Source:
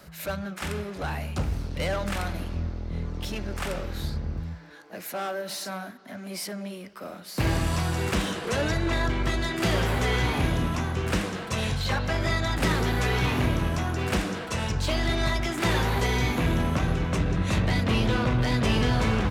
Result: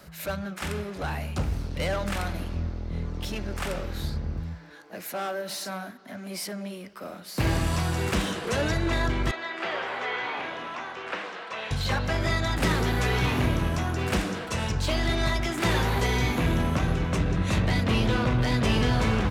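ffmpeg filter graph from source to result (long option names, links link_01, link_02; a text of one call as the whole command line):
ffmpeg -i in.wav -filter_complex "[0:a]asettb=1/sr,asplit=3[link_01][link_02][link_03];[link_01]atrim=end=9.314[link_04];[link_02]atrim=start=9.31:end=11.71,asetpts=PTS-STARTPTS,afade=type=in:duration=0.004:curve=qsin,afade=type=out:start_time=2.396:duration=0.004:curve=qsin,highpass=620,lowpass=4400,acrossover=split=3100[link_05][link_06];[link_06]acompressor=threshold=-49dB:ratio=4:attack=1:release=60[link_07];[link_05][link_07]amix=inputs=2:normalize=0[link_08];[link_03]atrim=start=11.706[link_09];[link_04][link_08]acrossfade=duration=0.004:curve1=hsin:curve2=qsin[link_10];[link_10][link_09]acrossfade=duration=0.004:curve1=qsin:curve2=hsin" out.wav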